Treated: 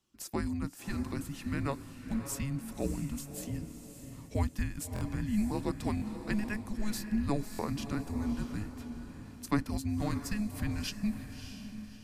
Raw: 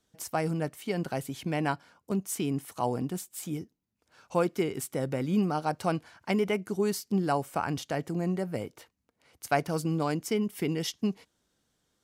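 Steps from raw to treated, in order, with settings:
feedback delay with all-pass diffusion 611 ms, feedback 41%, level −9 dB
frequency shifter −420 Hz
buffer that repeats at 0:04.94/0:05.95/0:07.52, samples 1,024, times 2
level −4 dB

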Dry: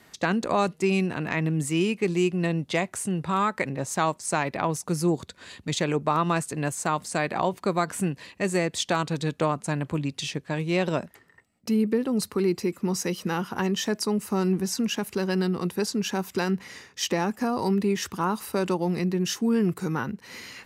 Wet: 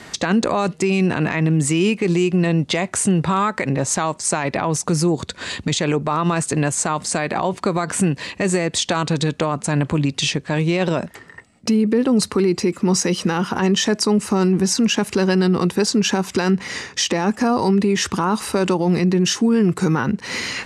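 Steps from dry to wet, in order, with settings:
low-pass filter 9,400 Hz 24 dB per octave
in parallel at +3 dB: downward compressor, threshold −35 dBFS, peak gain reduction 15.5 dB
on the sum: brickwall limiter −18 dBFS, peak gain reduction 10 dB
level +8.5 dB

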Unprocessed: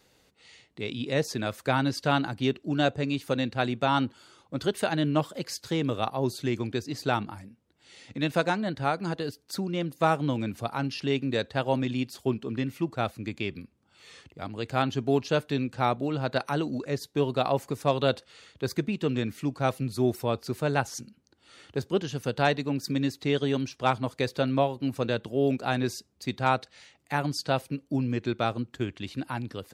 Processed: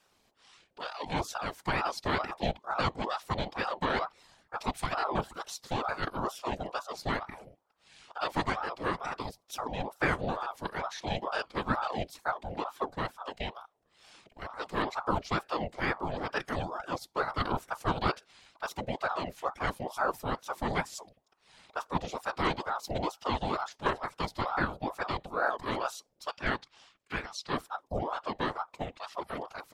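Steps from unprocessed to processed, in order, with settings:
0:26.31–0:27.53: three-way crossover with the lows and the highs turned down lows −12 dB, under 540 Hz, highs −13 dB, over 7,500 Hz
random phases in short frames
ring modulator whose carrier an LFO sweeps 700 Hz, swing 55%, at 2.2 Hz
level −2.5 dB

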